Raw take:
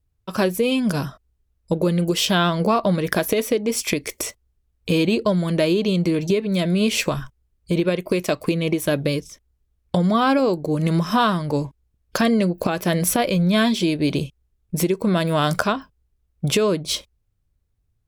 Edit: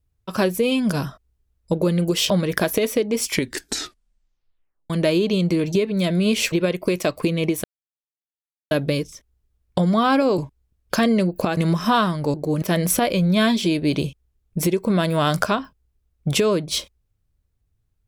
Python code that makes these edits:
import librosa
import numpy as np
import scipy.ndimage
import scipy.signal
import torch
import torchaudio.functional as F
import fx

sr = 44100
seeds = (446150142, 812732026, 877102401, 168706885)

y = fx.edit(x, sr, fx.cut(start_s=2.3, length_s=0.55),
    fx.tape_stop(start_s=3.81, length_s=1.64),
    fx.cut(start_s=7.07, length_s=0.69),
    fx.insert_silence(at_s=8.88, length_s=1.07),
    fx.swap(start_s=10.55, length_s=0.28, other_s=11.6, other_length_s=1.19), tone=tone)